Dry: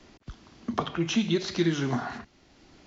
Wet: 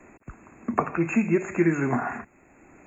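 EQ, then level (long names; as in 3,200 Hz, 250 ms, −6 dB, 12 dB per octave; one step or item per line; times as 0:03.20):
linear-phase brick-wall band-stop 2,700–6,500 Hz
low-shelf EQ 150 Hz −8.5 dB
+5.5 dB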